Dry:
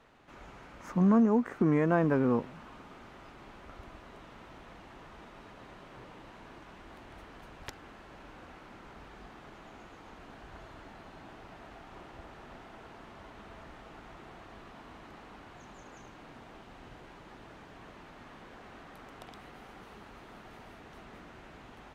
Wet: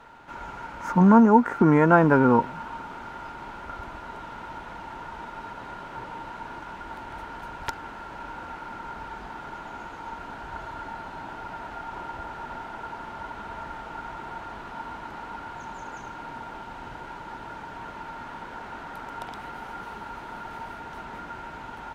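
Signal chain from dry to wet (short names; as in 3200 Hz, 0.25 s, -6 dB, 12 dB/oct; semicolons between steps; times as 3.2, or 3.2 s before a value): small resonant body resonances 920/1400 Hz, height 17 dB, ringing for 55 ms; gain +7.5 dB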